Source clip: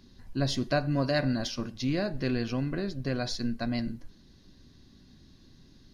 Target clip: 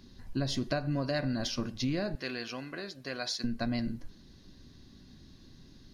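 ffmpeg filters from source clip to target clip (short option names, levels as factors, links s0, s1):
-filter_complex "[0:a]asettb=1/sr,asplit=3[s0][s1][s2];[s0]atrim=end=2.154[s3];[s1]atrim=start=2.15:end=3.44,asetpts=PTS-STARTPTS,afade=t=in:d=0.004:c=qsin,afade=t=out:st=1.286:d=0.004:c=qsin,highpass=f=1100:p=1[s4];[s2]atrim=start=3.436[s5];[s3][s4]acrossfade=d=0.004:c1=hsin:c2=qsin[s6];[s6][s5]acrossfade=d=0.004:c1=qsin:c2=hsin,acompressor=threshold=0.0355:ratio=6,volume=1.19"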